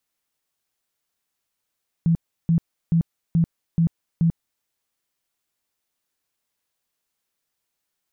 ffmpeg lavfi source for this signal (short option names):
-f lavfi -i "aevalsrc='0.188*sin(2*PI*166*mod(t,0.43))*lt(mod(t,0.43),15/166)':d=2.58:s=44100"